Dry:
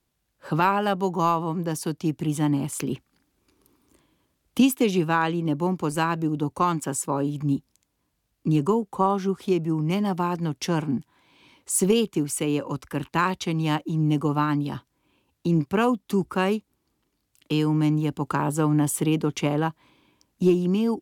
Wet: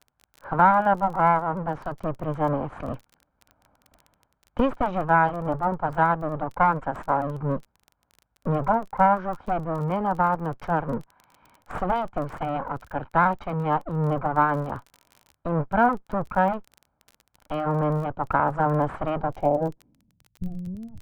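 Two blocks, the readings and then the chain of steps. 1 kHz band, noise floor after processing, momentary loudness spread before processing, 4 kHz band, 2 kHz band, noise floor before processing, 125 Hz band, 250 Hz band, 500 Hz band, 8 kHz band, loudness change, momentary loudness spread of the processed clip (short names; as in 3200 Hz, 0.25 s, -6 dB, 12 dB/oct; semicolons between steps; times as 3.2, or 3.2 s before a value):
+5.5 dB, -75 dBFS, 7 LU, under -10 dB, +2.5 dB, -75 dBFS, -3.0 dB, -6.0 dB, 0.0 dB, under -25 dB, -0.5 dB, 13 LU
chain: minimum comb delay 1.3 ms; low-pass sweep 1200 Hz -> 120 Hz, 19.19–20.32; crackle 23/s -35 dBFS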